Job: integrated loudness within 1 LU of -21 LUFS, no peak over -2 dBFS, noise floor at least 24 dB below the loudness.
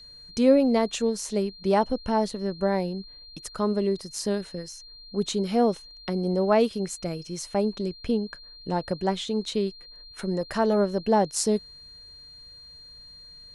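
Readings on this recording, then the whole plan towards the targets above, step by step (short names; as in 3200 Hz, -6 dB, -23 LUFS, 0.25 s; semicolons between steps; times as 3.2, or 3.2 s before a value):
steady tone 4200 Hz; tone level -45 dBFS; loudness -26.0 LUFS; peak -9.0 dBFS; loudness target -21.0 LUFS
-> notch 4200 Hz, Q 30; gain +5 dB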